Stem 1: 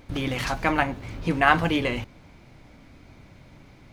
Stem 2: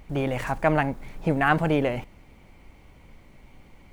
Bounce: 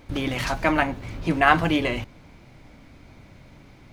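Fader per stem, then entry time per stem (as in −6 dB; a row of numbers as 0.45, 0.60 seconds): +1.0, −9.0 decibels; 0.00, 0.00 seconds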